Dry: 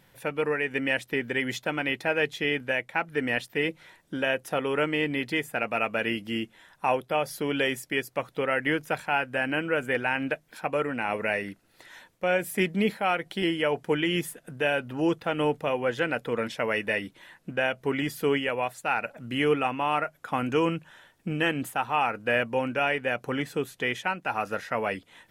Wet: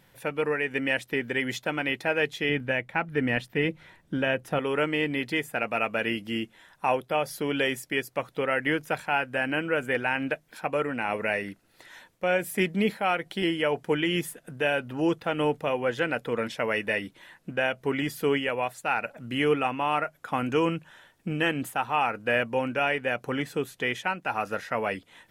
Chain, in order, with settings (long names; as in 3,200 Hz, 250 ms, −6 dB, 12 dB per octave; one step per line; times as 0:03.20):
0:02.49–0:04.59: bass and treble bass +8 dB, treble −6 dB